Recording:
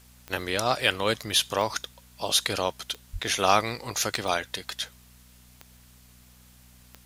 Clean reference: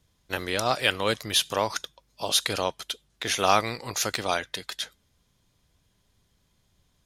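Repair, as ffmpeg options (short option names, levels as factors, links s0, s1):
-filter_complex "[0:a]adeclick=t=4,bandreject=f=61.4:t=h:w=4,bandreject=f=122.8:t=h:w=4,bandreject=f=184.2:t=h:w=4,bandreject=f=245.6:t=h:w=4,asplit=3[s0][s1][s2];[s0]afade=t=out:st=3.12:d=0.02[s3];[s1]highpass=f=140:w=0.5412,highpass=f=140:w=1.3066,afade=t=in:st=3.12:d=0.02,afade=t=out:st=3.24:d=0.02[s4];[s2]afade=t=in:st=3.24:d=0.02[s5];[s3][s4][s5]amix=inputs=3:normalize=0,agate=range=0.0891:threshold=0.00501"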